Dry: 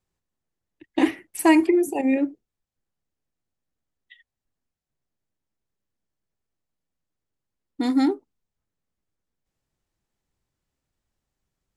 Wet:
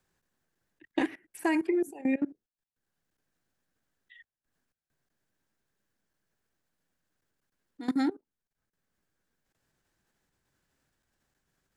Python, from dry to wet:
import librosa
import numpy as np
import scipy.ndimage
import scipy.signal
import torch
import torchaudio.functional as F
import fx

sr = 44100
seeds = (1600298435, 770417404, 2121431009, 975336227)

y = fx.level_steps(x, sr, step_db=21)
y = fx.peak_eq(y, sr, hz=1600.0, db=9.0, octaves=0.32)
y = fx.band_squash(y, sr, depth_pct=40)
y = y * 10.0 ** (-4.0 / 20.0)